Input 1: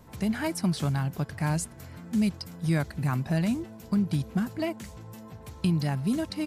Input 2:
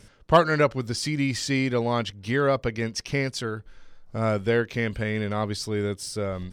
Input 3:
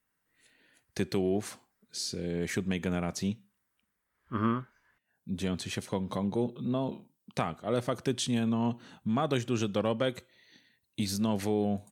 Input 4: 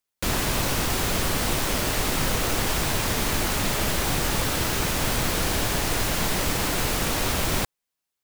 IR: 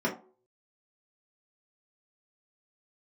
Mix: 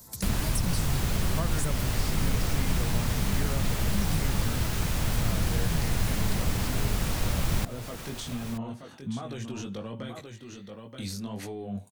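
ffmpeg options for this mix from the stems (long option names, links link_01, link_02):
-filter_complex "[0:a]aexciter=amount=4.8:drive=8.6:freq=4000,volume=-3dB[link_01];[1:a]adelay=1050,volume=-5.5dB[link_02];[2:a]alimiter=level_in=1dB:limit=-24dB:level=0:latency=1:release=12,volume=-1dB,flanger=delay=16:depth=5.9:speed=1.3,volume=3dB,asplit=3[link_03][link_04][link_05];[link_04]volume=-8.5dB[link_06];[3:a]volume=2dB,asplit=2[link_07][link_08];[link_08]volume=-17dB[link_09];[link_05]apad=whole_len=284939[link_10];[link_01][link_10]sidechaincompress=threshold=-38dB:ratio=8:attack=16:release=776[link_11];[link_06][link_09]amix=inputs=2:normalize=0,aecho=0:1:927:1[link_12];[link_11][link_02][link_03][link_07][link_12]amix=inputs=5:normalize=0,equalizer=frequency=340:width_type=o:width=0.77:gain=-2,acrossover=split=190[link_13][link_14];[link_14]acompressor=threshold=-36dB:ratio=3[link_15];[link_13][link_15]amix=inputs=2:normalize=0"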